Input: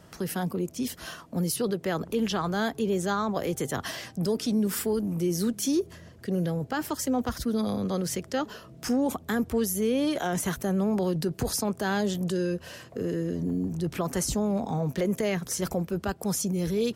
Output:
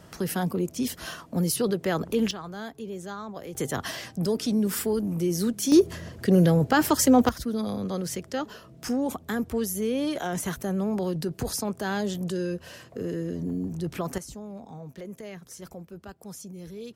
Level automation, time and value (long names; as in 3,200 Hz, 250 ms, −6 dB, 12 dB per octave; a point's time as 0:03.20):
+2.5 dB
from 0:02.31 −9.5 dB
from 0:03.55 +1 dB
from 0:05.72 +9 dB
from 0:07.29 −1.5 dB
from 0:14.18 −13 dB